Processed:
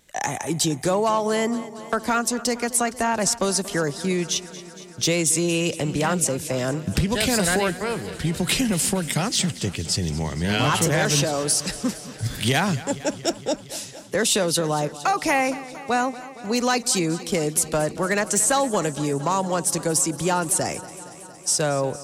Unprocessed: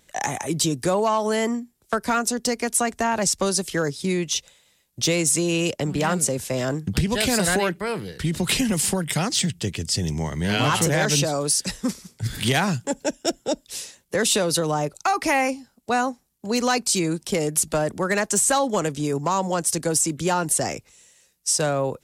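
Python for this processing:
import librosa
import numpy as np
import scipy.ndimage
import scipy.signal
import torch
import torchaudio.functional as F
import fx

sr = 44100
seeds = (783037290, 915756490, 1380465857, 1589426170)

y = fx.echo_warbled(x, sr, ms=231, feedback_pct=74, rate_hz=2.8, cents=58, wet_db=-17)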